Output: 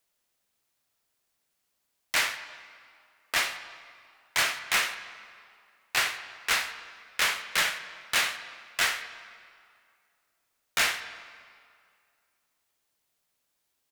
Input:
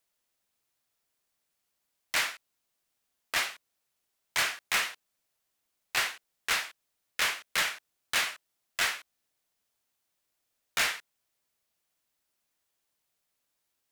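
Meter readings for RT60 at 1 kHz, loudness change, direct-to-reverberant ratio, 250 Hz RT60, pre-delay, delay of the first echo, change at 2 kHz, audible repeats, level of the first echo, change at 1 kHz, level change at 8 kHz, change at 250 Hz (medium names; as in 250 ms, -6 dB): 2.2 s, +2.5 dB, 9.5 dB, 2.0 s, 21 ms, 83 ms, +3.0 dB, 1, -17.0 dB, +3.0 dB, +2.5 dB, +3.0 dB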